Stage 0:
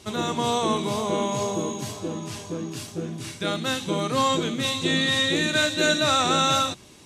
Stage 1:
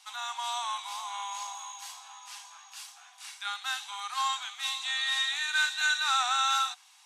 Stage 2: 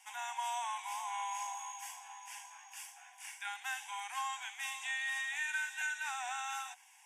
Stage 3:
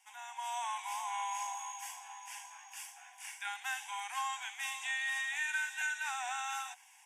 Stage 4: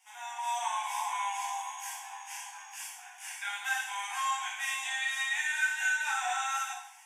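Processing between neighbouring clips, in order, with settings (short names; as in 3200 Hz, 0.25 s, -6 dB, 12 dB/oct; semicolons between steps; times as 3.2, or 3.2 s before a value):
Chebyshev high-pass 740 Hz, order 8; dynamic EQ 1500 Hz, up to +5 dB, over -41 dBFS, Q 5.6; gain -5.5 dB
compressor 5:1, threshold -31 dBFS, peak gain reduction 8.5 dB; fixed phaser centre 830 Hz, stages 8; gain +1 dB
AGC gain up to 8.5 dB; gain -7 dB
plate-style reverb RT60 0.67 s, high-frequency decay 0.8×, DRR -4 dB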